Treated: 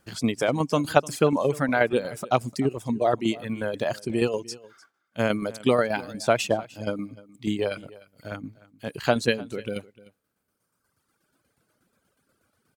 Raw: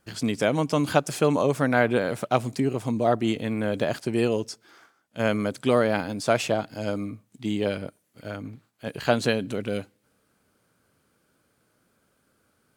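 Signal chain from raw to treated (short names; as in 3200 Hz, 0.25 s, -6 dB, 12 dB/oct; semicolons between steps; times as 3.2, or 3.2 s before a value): reverb removal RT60 1.9 s; tremolo saw down 8.3 Hz, depth 55%; echo 0.301 s -20.5 dB; gain +3.5 dB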